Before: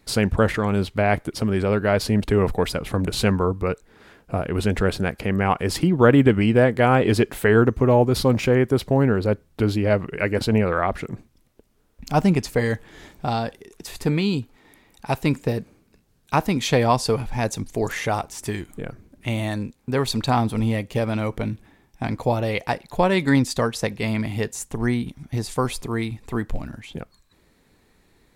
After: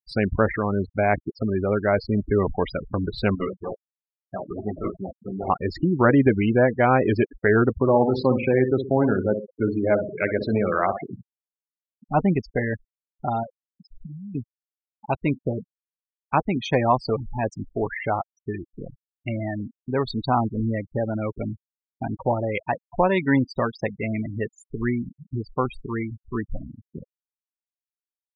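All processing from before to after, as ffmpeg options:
-filter_complex "[0:a]asettb=1/sr,asplit=3[s0][s1][s2];[s0]atrim=end=3.354[s3];[s1]atrim=start=3.35:end=5.5,asetpts=PTS-STARTPTS,afade=t=in:d=0.004:c=qsin,afade=t=out:st=2.146:d=0.004:c=qsin,lowshelf=f=140:g=-9.5,acrusher=samples=37:mix=1:aa=0.000001:lfo=1:lforange=37:lforate=2.8,flanger=delay=15:depth=3.8:speed=1.1[s4];[s2]atrim=start=5.496[s5];[s3][s4]acrossfade=d=0.004:c1=hsin:c2=qsin[s6];[s6][s5]acrossfade=d=0.004:c1=qsin:c2=hsin,asettb=1/sr,asplit=3[s7][s8][s9];[s7]atrim=end=7.784[s10];[s8]atrim=start=7.78:end=12.09,asetpts=PTS-STARTPTS,afade=t=in:d=0.004:c=qsin,afade=t=out:st=4.306:d=0.004:c=qsin,highpass=110,aecho=1:1:62|124|186|248|310:0.422|0.181|0.078|0.0335|0.0144,atrim=end_sample=190071[s11];[s9]atrim=start=12.086[s12];[s10][s11]acrossfade=d=0.004:c1=hsin:c2=qsin[s13];[s13][s12]acrossfade=d=0.004:c1=qsin:c2=hsin,asettb=1/sr,asplit=3[s14][s15][s16];[s14]atrim=end=13.434[s17];[s15]atrim=start=13.43:end=14.35,asetpts=PTS-STARTPTS,afade=t=in:d=0.004:c=qsin,afade=t=out:st=0.916:d=0.004:c=qsin,equalizer=f=60:w=1.7:g=-10,aecho=1:1:1.4:0.79,atrim=end_sample=40572,acompressor=threshold=0.0355:ratio=20:attack=3.2:release=140:knee=1:detection=peak[s18];[s16]atrim=start=14.346[s19];[s17][s18]acrossfade=d=0.004:c1=hsin:c2=qsin[s20];[s20][s19]acrossfade=d=0.004:c1=qsin:c2=hsin,bandreject=f=470:w=12,afftfilt=real='re*gte(hypot(re,im),0.0891)':imag='im*gte(hypot(re,im),0.0891)':win_size=1024:overlap=0.75,bass=f=250:g=-4,treble=f=4000:g=-12"

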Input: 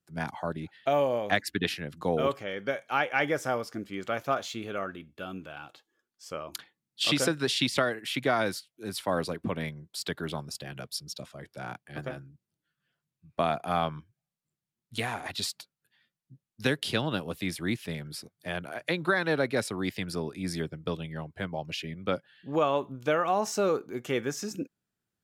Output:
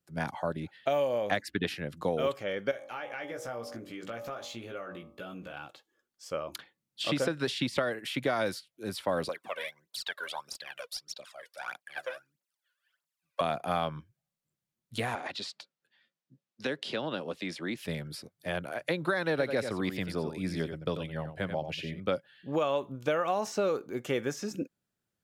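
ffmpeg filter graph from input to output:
-filter_complex "[0:a]asettb=1/sr,asplit=3[s0][s1][s2];[s0]atrim=end=2.714[s3];[s1]atrim=start=2.71:end=5.53,asetpts=PTS-STARTPTS,afade=t=in:d=0.004:c=qsin,afade=t=out:st=2.816:d=0.004:c=qsin,bandreject=f=48.16:t=h:w=4,bandreject=f=96.32:t=h:w=4,bandreject=f=144.48:t=h:w=4,bandreject=f=192.64:t=h:w=4,bandreject=f=240.8:t=h:w=4,bandreject=f=288.96:t=h:w=4,bandreject=f=337.12:t=h:w=4,bandreject=f=385.28:t=h:w=4,bandreject=f=433.44:t=h:w=4,bandreject=f=481.6:t=h:w=4,bandreject=f=529.76:t=h:w=4,bandreject=f=577.92:t=h:w=4,bandreject=f=626.08:t=h:w=4,bandreject=f=674.24:t=h:w=4,bandreject=f=722.4:t=h:w=4,bandreject=f=770.56:t=h:w=4,bandreject=f=818.72:t=h:w=4,bandreject=f=866.88:t=h:w=4,bandreject=f=915.04:t=h:w=4,bandreject=f=963.2:t=h:w=4,bandreject=f=1011.36:t=h:w=4,bandreject=f=1059.52:t=h:w=4,bandreject=f=1107.68:t=h:w=4,bandreject=f=1155.84:t=h:w=4,bandreject=f=1204:t=h:w=4,bandreject=f=1252.16:t=h:w=4,acompressor=threshold=0.00891:ratio=3:attack=3.2:release=140:knee=1:detection=peak,asplit=2[s4][s5];[s5]adelay=17,volume=0.596[s6];[s4][s6]amix=inputs=2:normalize=0,atrim=end_sample=124362[s7];[s2]atrim=start=5.526[s8];[s3][s7]acrossfade=d=0.004:c1=hsin:c2=qsin[s9];[s9][s8]acrossfade=d=0.004:c1=qsin:c2=hsin,asettb=1/sr,asplit=3[s10][s11][s12];[s10]atrim=end=9.294[s13];[s11]atrim=start=9.29:end=13.41,asetpts=PTS-STARTPTS,afade=t=in:d=0.004:c=qsin,afade=t=out:st=4.116:d=0.004:c=qsin,highpass=910,aphaser=in_gain=1:out_gain=1:delay=2.1:decay=0.71:speed=1.6:type=triangular[s14];[s12]atrim=start=13.406[s15];[s13][s14]acrossfade=d=0.004:c1=hsin:c2=qsin[s16];[s16][s15]acrossfade=d=0.004:c1=qsin:c2=hsin,asettb=1/sr,asplit=3[s17][s18][s19];[s17]atrim=end=15.154[s20];[s18]atrim=start=15.15:end=17.77,asetpts=PTS-STARTPTS,afade=t=in:d=0.004:c=qsin,afade=t=out:st=2.616:d=0.004:c=qsin,acrossover=split=180 7300:gain=0.126 1 0.0708[s21][s22][s23];[s21][s22][s23]amix=inputs=3:normalize=0,acompressor=threshold=0.0251:ratio=2:attack=3.2:release=140:knee=1:detection=peak[s24];[s19]atrim=start=17.766[s25];[s20][s24]acrossfade=d=0.004:c1=hsin:c2=qsin[s26];[s26][s25]acrossfade=d=0.004:c1=qsin:c2=hsin,asettb=1/sr,asplit=3[s27][s28][s29];[s27]atrim=end=19.304[s30];[s28]atrim=start=19.3:end=22,asetpts=PTS-STARTPTS,afade=t=in:d=0.004:c=qsin,afade=t=out:st=2.696:d=0.004:c=qsin,acrossover=split=3900[s31][s32];[s32]acompressor=threshold=0.00447:ratio=4:attack=1:release=60[s33];[s31][s33]amix=inputs=2:normalize=0,aecho=1:1:90:0.335,atrim=end_sample=119070[s34];[s29]atrim=start=21.996[s35];[s30][s34]acrossfade=d=0.004:c1=hsin:c2=qsin[s36];[s36][s35]acrossfade=d=0.004:c1=qsin:c2=hsin,equalizer=f=550:w=5:g=5.5,acrossover=split=1900|4400[s37][s38][s39];[s37]acompressor=threshold=0.0501:ratio=4[s40];[s38]acompressor=threshold=0.0112:ratio=4[s41];[s39]acompressor=threshold=0.00501:ratio=4[s42];[s40][s41][s42]amix=inputs=3:normalize=0"

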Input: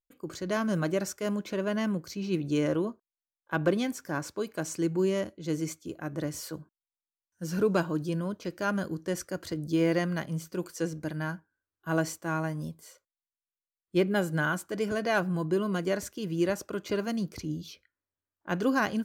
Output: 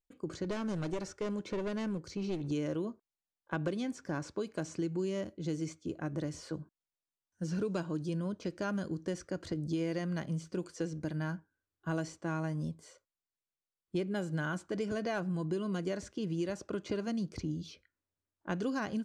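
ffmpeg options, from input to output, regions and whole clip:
-filter_complex "[0:a]asettb=1/sr,asplit=3[s0][s1][s2];[s0]atrim=end=0.444[s3];[s1]atrim=start=0.44:end=2.51,asetpts=PTS-STARTPTS,afade=t=in:d=0.004:c=qsin,afade=t=out:st=2.066:d=0.004:c=qsin,aecho=1:1:2.2:0.31,atrim=end_sample=91287,aeval=exprs='clip(val(0),-1,0.0266)':c=same[s4];[s2]atrim=start=2.506[s5];[s3][s4]acrossfade=d=0.004:c1=hsin:c2=qsin[s6];[s6][s5]acrossfade=d=0.004:c1=qsin:c2=hsin,lowpass=f=8900:w=0.5412,lowpass=f=8900:w=1.3066,tiltshelf=f=640:g=3.5,acrossover=split=2600|5900[s7][s8][s9];[s7]acompressor=threshold=0.0224:ratio=4[s10];[s8]acompressor=threshold=0.00282:ratio=4[s11];[s9]acompressor=threshold=0.00112:ratio=4[s12];[s10][s11][s12]amix=inputs=3:normalize=0"

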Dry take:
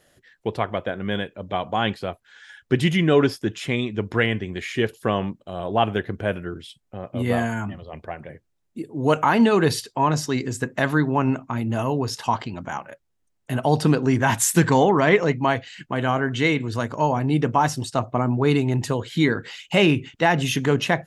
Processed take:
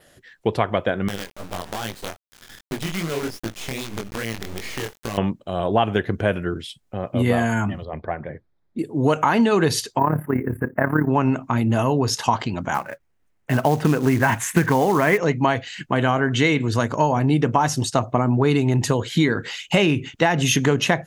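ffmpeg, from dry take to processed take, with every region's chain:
-filter_complex "[0:a]asettb=1/sr,asplit=3[s0][s1][s2];[s0]atrim=end=1.084[s3];[s1]atrim=start=1.08:end=5.18,asetpts=PTS-STARTPTS,afade=t=in:d=0.004:c=qsin,afade=t=out:st=4.096:d=0.004:c=qsin,acrusher=bits=4:dc=4:mix=0:aa=0.000001,acompressor=threshold=0.0398:ratio=4:attack=3.2:release=140:knee=1:detection=peak,flanger=delay=17.5:depth=7.6:speed=2.5[s4];[s2]atrim=start=5.176[s5];[s3][s4]acrossfade=d=0.004:c1=hsin:c2=qsin[s6];[s6][s5]acrossfade=d=0.004:c1=qsin:c2=hsin,asettb=1/sr,asplit=3[s7][s8][s9];[s7]atrim=end=7.854[s10];[s8]atrim=start=7.85:end=8.79,asetpts=PTS-STARTPTS,afade=t=in:d=0.004:c=qsin,afade=t=out:st=0.936:d=0.004:c=qsin,lowpass=f=3800:w=0.5412,lowpass=f=3800:w=1.3066,equalizer=f=2800:w=3.5:g=-14[s11];[s9]atrim=start=8.786[s12];[s10][s11]acrossfade=d=0.004:c1=hsin:c2=qsin[s13];[s13][s12]acrossfade=d=0.004:c1=qsin:c2=hsin,asettb=1/sr,asplit=3[s14][s15][s16];[s14]atrim=end=9.994[s17];[s15]atrim=start=9.99:end=11.08,asetpts=PTS-STARTPTS,afade=t=in:d=0.004:c=qsin,afade=t=out:st=1.086:d=0.004:c=qsin,acrusher=bits=7:mode=log:mix=0:aa=0.000001,tremolo=f=35:d=0.71,asuperstop=centerf=5300:order=8:qfactor=0.52[s18];[s16]atrim=start=11.076[s19];[s17][s18]acrossfade=d=0.004:c1=hsin:c2=qsin[s20];[s20][s19]acrossfade=d=0.004:c1=qsin:c2=hsin,asettb=1/sr,asplit=3[s21][s22][s23];[s21]atrim=end=12.744[s24];[s22]atrim=start=12.74:end=15.18,asetpts=PTS-STARTPTS,afade=t=in:d=0.004:c=qsin,afade=t=out:st=2.436:d=0.004:c=qsin,highshelf=f=3200:t=q:w=1.5:g=-12.5,acrusher=bits=5:mode=log:mix=0:aa=0.000001[s25];[s23]atrim=start=15.176[s26];[s24][s25]acrossfade=d=0.004:c1=hsin:c2=qsin[s27];[s27][s26]acrossfade=d=0.004:c1=qsin:c2=hsin,adynamicequalizer=threshold=0.00251:dfrequency=6400:dqfactor=7.2:tfrequency=6400:tqfactor=7.2:attack=5:release=100:ratio=0.375:range=3:mode=boostabove:tftype=bell,acompressor=threshold=0.1:ratio=6,volume=2"

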